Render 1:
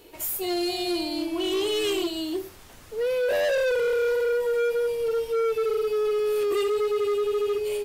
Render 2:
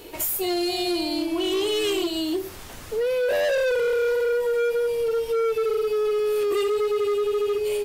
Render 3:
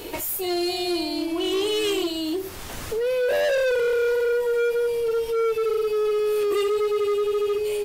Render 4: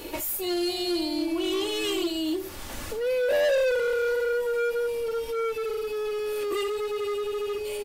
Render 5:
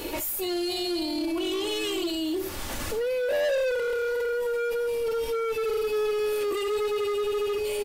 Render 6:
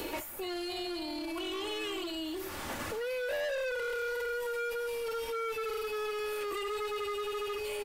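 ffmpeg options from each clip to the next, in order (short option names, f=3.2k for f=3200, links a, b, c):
-af "acompressor=threshold=-33dB:ratio=3,volume=8.5dB"
-af "alimiter=level_in=2.5dB:limit=-24dB:level=0:latency=1:release=432,volume=-2.5dB,volume=6.5dB"
-af "aecho=1:1:3.5:0.4,volume=-3dB"
-af "alimiter=level_in=3dB:limit=-24dB:level=0:latency=1:release=11,volume=-3dB,volume=4.5dB"
-filter_complex "[0:a]acrossover=split=84|800|2300[a][b][c][d];[a]acompressor=threshold=-55dB:ratio=4[e];[b]acompressor=threshold=-40dB:ratio=4[f];[c]acompressor=threshold=-37dB:ratio=4[g];[d]acompressor=threshold=-46dB:ratio=4[h];[e][f][g][h]amix=inputs=4:normalize=0"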